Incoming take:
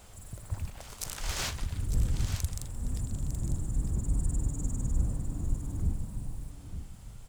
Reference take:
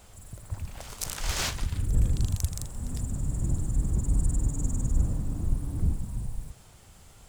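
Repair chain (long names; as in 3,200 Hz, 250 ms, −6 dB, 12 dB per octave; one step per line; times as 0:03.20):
echo removal 903 ms −10 dB
level correction +4 dB, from 0:00.70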